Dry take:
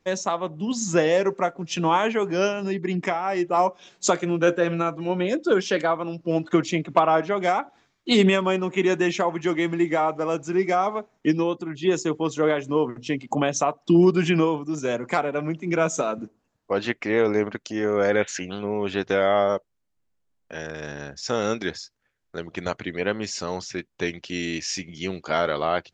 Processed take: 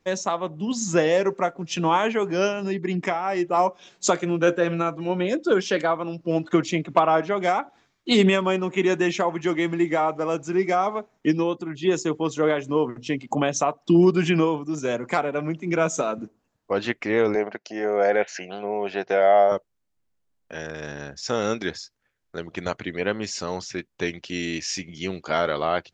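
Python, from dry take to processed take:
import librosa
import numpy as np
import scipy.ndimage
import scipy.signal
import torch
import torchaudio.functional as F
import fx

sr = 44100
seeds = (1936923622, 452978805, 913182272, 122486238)

y = fx.cabinet(x, sr, low_hz=250.0, low_slope=12, high_hz=5600.0, hz=(270.0, 700.0, 1200.0, 3500.0), db=(-9, 9, -6, -9), at=(17.35, 19.52))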